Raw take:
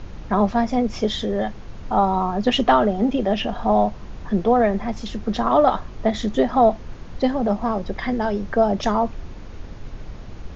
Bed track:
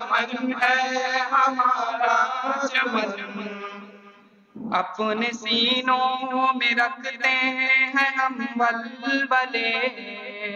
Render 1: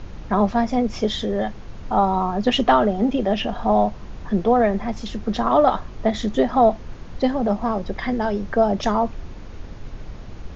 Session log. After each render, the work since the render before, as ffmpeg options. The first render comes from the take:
ffmpeg -i in.wav -af anull out.wav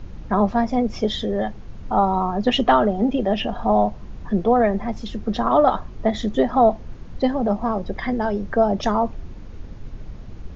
ffmpeg -i in.wav -af "afftdn=noise_reduction=6:noise_floor=-37" out.wav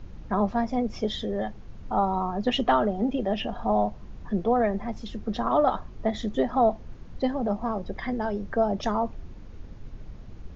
ffmpeg -i in.wav -af "volume=-6dB" out.wav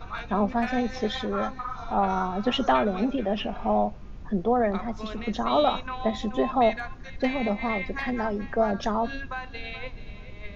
ffmpeg -i in.wav -i bed.wav -filter_complex "[1:a]volume=-14.5dB[link_01];[0:a][link_01]amix=inputs=2:normalize=0" out.wav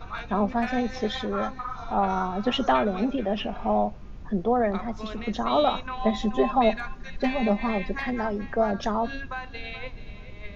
ffmpeg -i in.wav -filter_complex "[0:a]asettb=1/sr,asplit=3[link_01][link_02][link_03];[link_01]atrim=end=5.974[link_04];[link_02]atrim=start=5.97:end=7.95,asetpts=PTS-STARTPTS,afade=type=in:duration=0.004:curve=qsin,afade=type=out:start_time=1.976:duration=0.004:curve=qsin,aecho=1:1:5:0.65,atrim=end_sample=87318[link_05];[link_03]atrim=start=7.946[link_06];[link_04][link_05]acrossfade=duration=0.004:curve1=hsin:curve2=qsin[link_07];[link_07][link_06]acrossfade=duration=0.004:curve1=qsin:curve2=hsin" out.wav

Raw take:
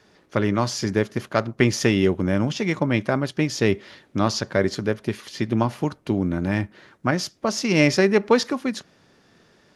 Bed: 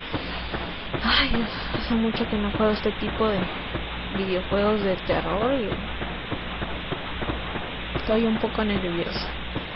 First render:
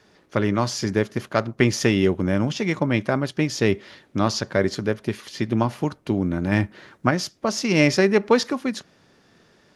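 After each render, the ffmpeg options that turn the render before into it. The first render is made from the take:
ffmpeg -i in.wav -filter_complex "[0:a]asplit=3[link_01][link_02][link_03];[link_01]atrim=end=6.522[link_04];[link_02]atrim=start=6.518:end=7.092,asetpts=PTS-STARTPTS,volume=3.5dB[link_05];[link_03]atrim=start=7.088[link_06];[link_04][link_05]acrossfade=duration=0.004:curve1=hsin:curve2=hsin[link_07];[link_07][link_06]acrossfade=duration=0.004:curve1=hsin:curve2=hsin" out.wav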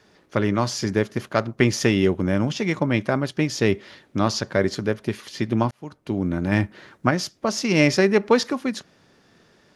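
ffmpeg -i in.wav -filter_complex "[0:a]asplit=2[link_01][link_02];[link_01]atrim=end=5.71,asetpts=PTS-STARTPTS,afade=type=out:start_time=5.706:duration=0.004:curve=hsin[link_03];[link_02]atrim=start=5.71,asetpts=PTS-STARTPTS,afade=type=in:duration=0.58[link_04];[link_03][link_04]concat=n=2:v=0:a=1" out.wav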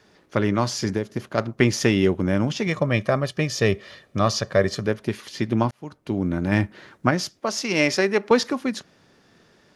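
ffmpeg -i in.wav -filter_complex "[0:a]asettb=1/sr,asplit=3[link_01][link_02][link_03];[link_01]atrim=end=0.894[link_04];[link_02]atrim=start=0.89:end=1.38,asetpts=PTS-STARTPTS,afade=type=in:duration=0.004:curve=qsin,afade=type=out:start_time=0.486:duration=0.004:curve=qsin,acrossover=split=790|3500[link_05][link_06][link_07];[link_05]acompressor=threshold=-21dB:ratio=4[link_08];[link_06]acompressor=threshold=-40dB:ratio=4[link_09];[link_07]acompressor=threshold=-49dB:ratio=4[link_10];[link_08][link_09][link_10]amix=inputs=3:normalize=0[link_11];[link_03]atrim=start=1.376[link_12];[link_04][link_11]acrossfade=duration=0.004:curve1=hsin:curve2=qsin[link_13];[link_13][link_12]acrossfade=duration=0.004:curve1=qsin:curve2=hsin,asettb=1/sr,asplit=3[link_14][link_15][link_16];[link_14]atrim=end=2.674[link_17];[link_15]atrim=start=2.67:end=4.87,asetpts=PTS-STARTPTS,afade=type=in:duration=0.004:curve=qsin,afade=type=out:start_time=2.196:duration=0.004:curve=qsin,aecho=1:1:1.7:0.52,atrim=end_sample=97020[link_18];[link_16]atrim=start=4.866[link_19];[link_17][link_18]acrossfade=duration=0.004:curve1=hsin:curve2=qsin[link_20];[link_20][link_19]acrossfade=duration=0.004:curve1=qsin:curve2=hsin,asettb=1/sr,asplit=3[link_21][link_22][link_23];[link_21]atrim=end=7.404[link_24];[link_22]atrim=start=7.4:end=8.31,asetpts=PTS-STARTPTS,afade=type=in:duration=0.004:curve=qsin,afade=type=out:start_time=0.906:duration=0.004:curve=qsin,highpass=frequency=400:poles=1[link_25];[link_23]atrim=start=8.306[link_26];[link_24][link_25]acrossfade=duration=0.004:curve1=hsin:curve2=qsin[link_27];[link_27][link_26]acrossfade=duration=0.004:curve1=qsin:curve2=hsin" out.wav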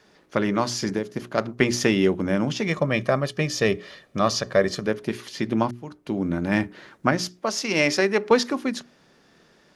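ffmpeg -i in.wav -af "equalizer=frequency=100:width_type=o:width=0.3:gain=-13,bandreject=frequency=60:width_type=h:width=6,bandreject=frequency=120:width_type=h:width=6,bandreject=frequency=180:width_type=h:width=6,bandreject=frequency=240:width_type=h:width=6,bandreject=frequency=300:width_type=h:width=6,bandreject=frequency=360:width_type=h:width=6,bandreject=frequency=420:width_type=h:width=6" out.wav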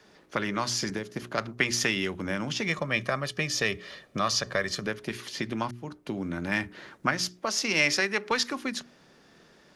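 ffmpeg -i in.wav -filter_complex "[0:a]acrossover=split=120|1100[link_01][link_02][link_03];[link_01]alimiter=level_in=16dB:limit=-24dB:level=0:latency=1,volume=-16dB[link_04];[link_02]acompressor=threshold=-31dB:ratio=6[link_05];[link_04][link_05][link_03]amix=inputs=3:normalize=0" out.wav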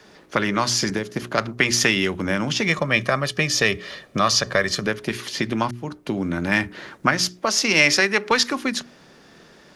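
ffmpeg -i in.wav -af "volume=8dB,alimiter=limit=-3dB:level=0:latency=1" out.wav

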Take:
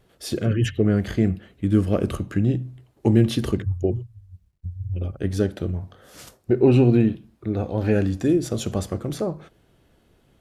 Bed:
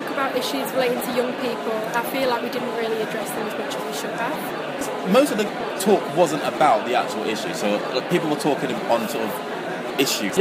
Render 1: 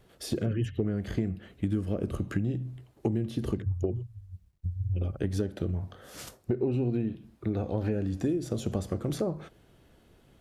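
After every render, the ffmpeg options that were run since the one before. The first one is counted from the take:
ffmpeg -i in.wav -filter_complex "[0:a]acrossover=split=680[link_01][link_02];[link_02]alimiter=level_in=5.5dB:limit=-24dB:level=0:latency=1:release=217,volume=-5.5dB[link_03];[link_01][link_03]amix=inputs=2:normalize=0,acompressor=threshold=-25dB:ratio=10" out.wav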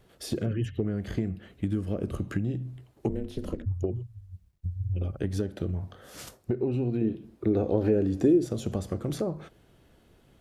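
ffmpeg -i in.wav -filter_complex "[0:a]asettb=1/sr,asplit=3[link_01][link_02][link_03];[link_01]atrim=end=3.094[link_04];[link_02]atrim=start=3.09:end=3.66,asetpts=PTS-STARTPTS,afade=type=in:duration=0.004:curve=qsin,afade=type=out:start_time=0.566:duration=0.004:curve=qsin,aeval=exprs='val(0)*sin(2*PI*130*n/s)':channel_layout=same[link_05];[link_03]atrim=start=3.656[link_06];[link_04][link_05]acrossfade=duration=0.004:curve1=hsin:curve2=qsin[link_07];[link_07][link_06]acrossfade=duration=0.004:curve1=qsin:curve2=hsin,asettb=1/sr,asplit=3[link_08][link_09][link_10];[link_08]atrim=end=7.014[link_11];[link_09]atrim=start=7.01:end=8.46,asetpts=PTS-STARTPTS,afade=type=in:duration=0.004:curve=qsin,afade=type=out:start_time=1.446:duration=0.004:curve=qsin,equalizer=frequency=390:width_type=o:width=1.2:gain=10[link_12];[link_10]atrim=start=8.456[link_13];[link_11][link_12]acrossfade=duration=0.004:curve1=hsin:curve2=qsin[link_14];[link_14][link_13]acrossfade=duration=0.004:curve1=qsin:curve2=hsin" out.wav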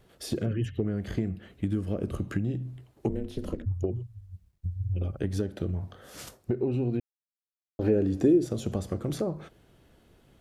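ffmpeg -i in.wav -filter_complex "[0:a]asplit=3[link_01][link_02][link_03];[link_01]atrim=end=7,asetpts=PTS-STARTPTS,afade=type=out:start_time=6.996:duration=0.004:curve=hsin[link_04];[link_02]atrim=start=7:end=7.79,asetpts=PTS-STARTPTS,volume=0[link_05];[link_03]atrim=start=7.79,asetpts=PTS-STARTPTS,afade=type=in:duration=0.004:curve=hsin[link_06];[link_04][link_05][link_06]concat=n=3:v=0:a=1" out.wav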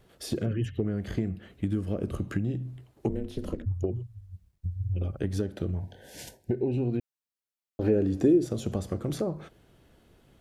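ffmpeg -i in.wav -filter_complex "[0:a]asettb=1/sr,asplit=3[link_01][link_02][link_03];[link_01]atrim=end=5.804[link_04];[link_02]atrim=start=5.8:end=6.78,asetpts=PTS-STARTPTS,afade=type=in:duration=0.004:curve=qsin,afade=type=out:start_time=0.976:duration=0.004:curve=qsin,asuperstop=centerf=1200:order=20:qfactor=2.4[link_05];[link_03]atrim=start=6.776[link_06];[link_04][link_05]acrossfade=duration=0.004:curve1=hsin:curve2=qsin[link_07];[link_07][link_06]acrossfade=duration=0.004:curve1=qsin:curve2=hsin" out.wav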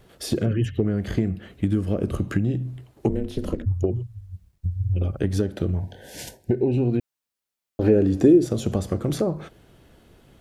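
ffmpeg -i in.wav -af "volume=6.5dB" out.wav

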